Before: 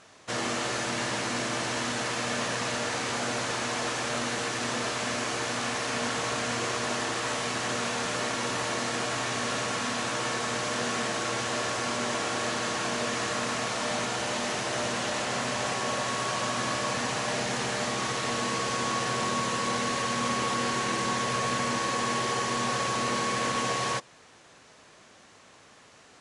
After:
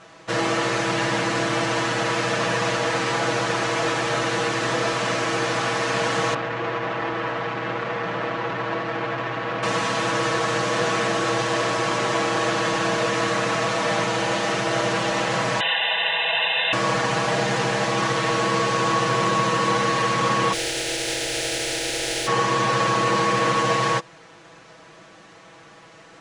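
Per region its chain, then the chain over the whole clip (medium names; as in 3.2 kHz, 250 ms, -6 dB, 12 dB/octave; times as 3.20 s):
6.34–9.63 s: low-pass 2.3 kHz + transformer saturation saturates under 1.6 kHz
15.60–16.73 s: comb 1 ms, depth 99% + frequency inversion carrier 3.8 kHz + high-pass 270 Hz
20.52–22.26 s: spectral contrast reduction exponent 0.26 + static phaser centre 450 Hz, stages 4
whole clip: low-pass 2.7 kHz 6 dB/octave; comb 6.1 ms, depth 92%; trim +6.5 dB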